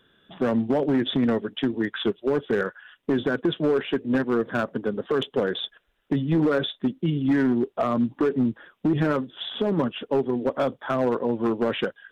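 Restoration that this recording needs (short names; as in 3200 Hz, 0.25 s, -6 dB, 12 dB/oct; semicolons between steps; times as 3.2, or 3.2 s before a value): clip repair -16 dBFS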